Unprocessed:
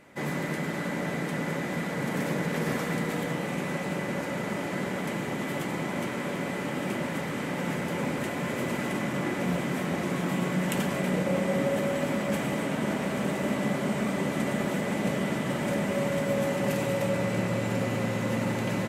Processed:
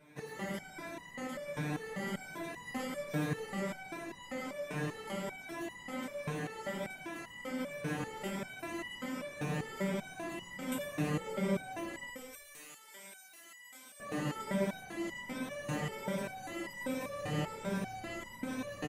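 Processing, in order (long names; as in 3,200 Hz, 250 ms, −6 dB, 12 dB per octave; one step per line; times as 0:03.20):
rippled gain that drifts along the octave scale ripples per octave 1.6, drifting +1.3 Hz, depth 11 dB
0:12.10–0:14.00: first difference
on a send: echo with shifted repeats 96 ms, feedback 53%, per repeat −33 Hz, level −10.5 dB
on the sum: step-sequenced resonator 5.1 Hz 150–990 Hz
level +4 dB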